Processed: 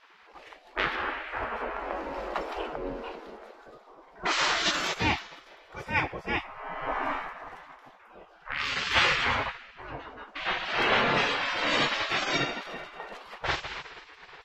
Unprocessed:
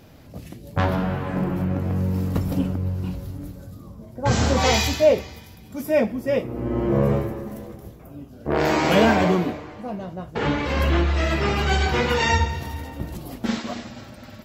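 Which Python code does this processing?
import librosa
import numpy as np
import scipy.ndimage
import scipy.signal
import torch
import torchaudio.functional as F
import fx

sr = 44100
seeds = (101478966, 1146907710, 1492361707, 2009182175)

y = fx.spec_gate(x, sr, threshold_db=-20, keep='weak')
y = fx.env_lowpass(y, sr, base_hz=2200.0, full_db=-16.0)
y = F.gain(torch.from_numpy(y), 7.0).numpy()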